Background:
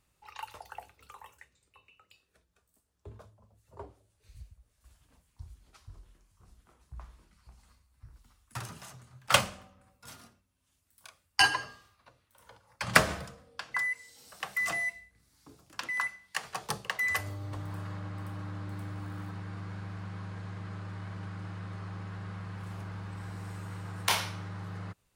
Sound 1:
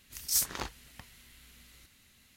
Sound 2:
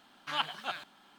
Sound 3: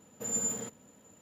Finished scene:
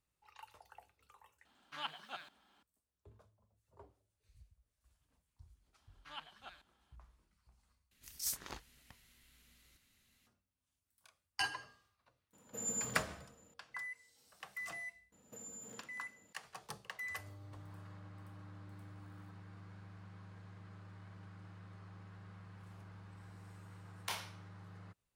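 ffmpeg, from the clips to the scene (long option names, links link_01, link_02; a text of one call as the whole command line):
ffmpeg -i bed.wav -i cue0.wav -i cue1.wav -i cue2.wav -filter_complex "[2:a]asplit=2[link_01][link_02];[3:a]asplit=2[link_03][link_04];[0:a]volume=-13.5dB[link_05];[link_02]aresample=32000,aresample=44100[link_06];[link_04]acompressor=threshold=-40dB:ratio=6:attack=3.2:release=140:knee=1:detection=peak[link_07];[link_05]asplit=2[link_08][link_09];[link_08]atrim=end=7.914[link_10];[1:a]atrim=end=2.36,asetpts=PTS-STARTPTS,volume=-10.5dB[link_11];[link_09]atrim=start=10.266[link_12];[link_01]atrim=end=1.18,asetpts=PTS-STARTPTS,volume=-10.5dB,afade=type=in:duration=0.004:curve=hsin,afade=type=out:start_time=1.176:duration=0.004:curve=hsin,adelay=1450[link_13];[link_06]atrim=end=1.18,asetpts=PTS-STARTPTS,volume=-17dB,afade=type=in:duration=0.004:curve=hsin,afade=type=out:start_time=1.176:duration=0.004:curve=hsin,adelay=5780[link_14];[link_03]atrim=end=1.21,asetpts=PTS-STARTPTS,volume=-7dB,afade=type=in:duration=0.004:curve=hsin,afade=type=out:start_time=1.206:duration=0.004:curve=hsin,adelay=12330[link_15];[link_07]atrim=end=1.21,asetpts=PTS-STARTPTS,volume=-8.5dB,afade=type=in:duration=0.004:curve=hsin,afade=type=out:start_time=1.206:duration=0.004:curve=hsin,adelay=15120[link_16];[link_10][link_11]acrossfade=duration=0.004:curve1=hsin:curve2=hsin[link_17];[link_17][link_12]acrossfade=duration=0.004:curve1=hsin:curve2=hsin[link_18];[link_18][link_13][link_14][link_15][link_16]amix=inputs=5:normalize=0" out.wav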